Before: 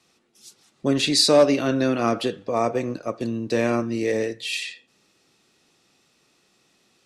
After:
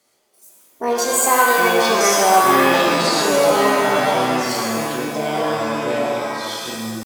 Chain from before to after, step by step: pitch shift +9.5 st; echoes that change speed 0.49 s, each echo -5 st, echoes 2; shimmer reverb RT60 1.4 s, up +7 st, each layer -2 dB, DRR 0.5 dB; gain -1 dB

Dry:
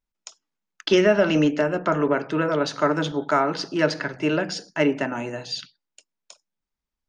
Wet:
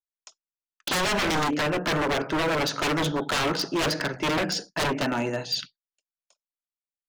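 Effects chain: expander -34 dBFS; wavefolder -22.5 dBFS; gain +3 dB

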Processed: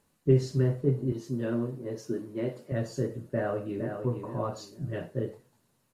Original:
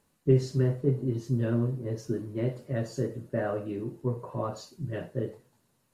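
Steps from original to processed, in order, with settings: 1.12–2.72 HPF 190 Hz 12 dB/oct; 3.23–4.03 echo throw 0.46 s, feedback 25%, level -7 dB

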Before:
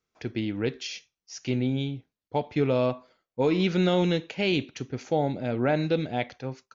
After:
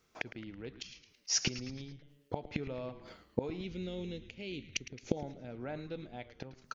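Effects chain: 3.64–5.17 band shelf 1100 Hz -10.5 dB; flipped gate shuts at -29 dBFS, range -28 dB; on a send: frequency-shifting echo 0.109 s, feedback 53%, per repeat -140 Hz, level -13.5 dB; on the sum: gain +11 dB

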